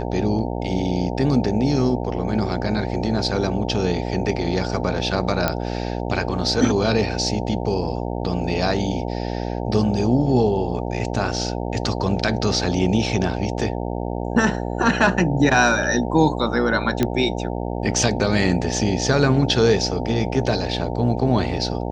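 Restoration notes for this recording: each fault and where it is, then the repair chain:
buzz 60 Hz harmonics 15 -26 dBFS
5.48 s: pop -5 dBFS
17.03 s: pop -6 dBFS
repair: de-click; de-hum 60 Hz, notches 15

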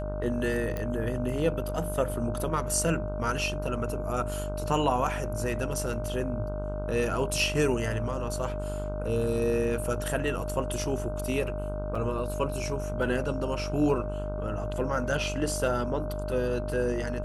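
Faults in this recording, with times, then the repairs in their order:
buzz 50 Hz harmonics 31 -34 dBFS
whine 610 Hz -35 dBFS
0.77 s: pop -19 dBFS
11.95 s: dropout 3.9 ms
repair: de-click; band-stop 610 Hz, Q 30; de-hum 50 Hz, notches 31; interpolate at 11.95 s, 3.9 ms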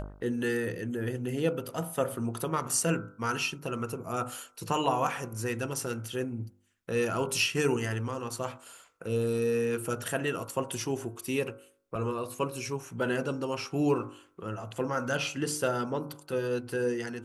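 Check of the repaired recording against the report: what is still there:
nothing left

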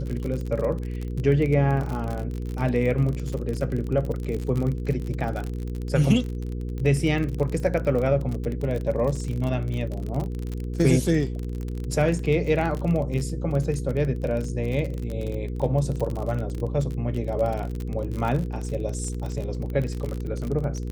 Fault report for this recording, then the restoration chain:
crackle 38 per s -28 dBFS
hum 60 Hz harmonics 8 -30 dBFS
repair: de-click; de-hum 60 Hz, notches 8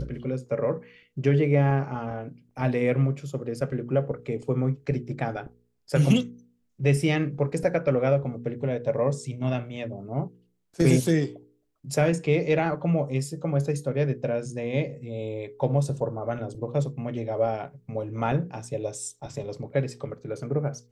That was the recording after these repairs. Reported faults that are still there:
nothing left

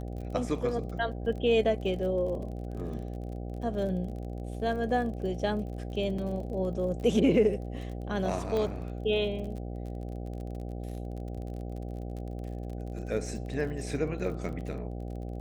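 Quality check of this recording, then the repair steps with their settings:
buzz 60 Hz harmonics 13 -37 dBFS
crackle 39 per s -39 dBFS
6.18 s: dropout 4.6 ms
8.57 s: pop -20 dBFS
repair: de-click; de-hum 60 Hz, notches 13; interpolate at 6.18 s, 4.6 ms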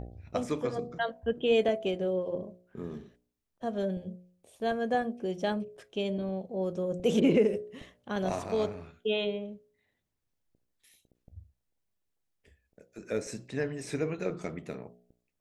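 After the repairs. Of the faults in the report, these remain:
nothing left

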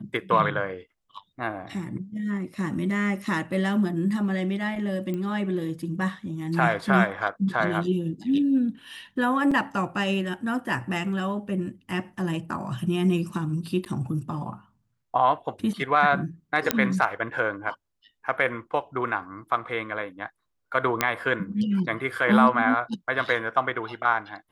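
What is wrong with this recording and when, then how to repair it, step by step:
5.14 s: pop -20 dBFS
9.51–9.52 s: dropout 5 ms
13.85–13.86 s: dropout 9.1 ms
16.71 s: pop -3 dBFS
21.01 s: pop -5 dBFS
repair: de-click; interpolate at 9.51 s, 5 ms; interpolate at 13.85 s, 9.1 ms

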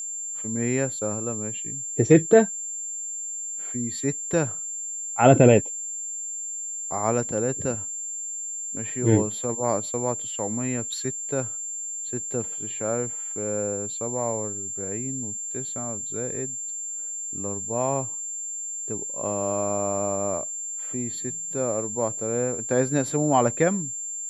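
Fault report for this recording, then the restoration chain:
whine 7.3 kHz -30 dBFS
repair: band-stop 7.3 kHz, Q 30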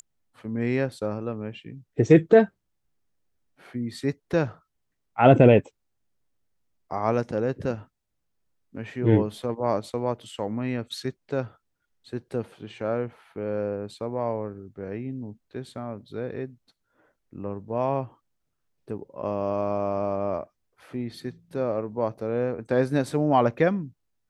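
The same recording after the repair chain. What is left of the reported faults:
nothing left

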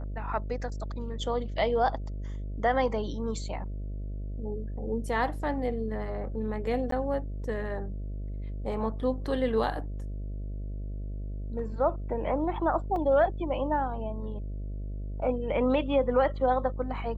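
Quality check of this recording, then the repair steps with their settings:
buzz 50 Hz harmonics 13 -35 dBFS
6.91–6.92 s: dropout 13 ms
12.96 s: dropout 2.4 ms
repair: de-hum 50 Hz, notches 13; interpolate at 6.91 s, 13 ms; interpolate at 12.96 s, 2.4 ms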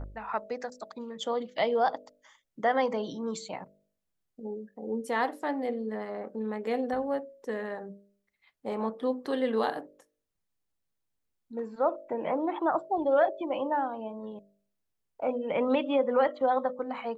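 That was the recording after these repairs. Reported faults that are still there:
nothing left

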